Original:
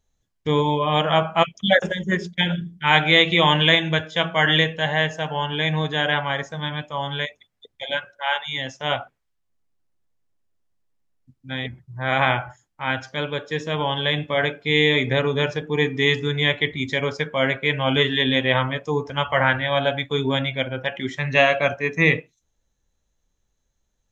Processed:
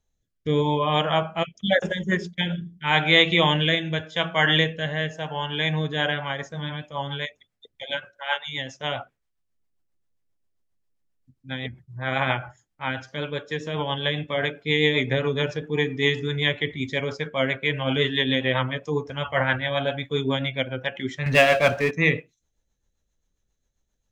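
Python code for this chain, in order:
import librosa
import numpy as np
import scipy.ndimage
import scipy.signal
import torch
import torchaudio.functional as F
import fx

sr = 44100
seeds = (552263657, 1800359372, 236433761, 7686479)

y = fx.rotary_switch(x, sr, hz=0.85, then_hz=7.5, switch_at_s=5.62)
y = fx.power_curve(y, sr, exponent=0.7, at=(21.26, 21.91))
y = y * librosa.db_to_amplitude(-1.0)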